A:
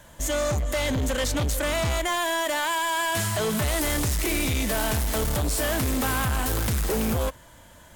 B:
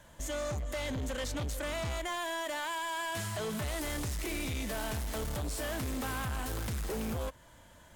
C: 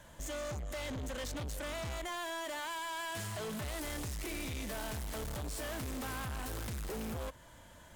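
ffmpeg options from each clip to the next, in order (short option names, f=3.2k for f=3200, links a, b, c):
-af "highshelf=f=10k:g=-6,acompressor=threshold=-34dB:ratio=1.5,volume=-6.5dB"
-af "asoftclip=type=tanh:threshold=-38.5dB,volume=1dB"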